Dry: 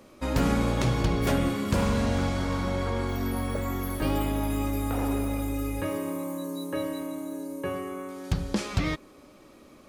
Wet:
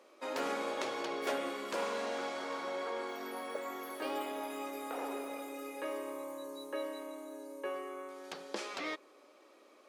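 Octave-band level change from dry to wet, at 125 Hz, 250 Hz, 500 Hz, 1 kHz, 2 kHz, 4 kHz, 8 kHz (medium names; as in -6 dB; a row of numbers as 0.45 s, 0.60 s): under -35 dB, -16.5 dB, -6.0 dB, -5.5 dB, -6.0 dB, -6.5 dB, -9.5 dB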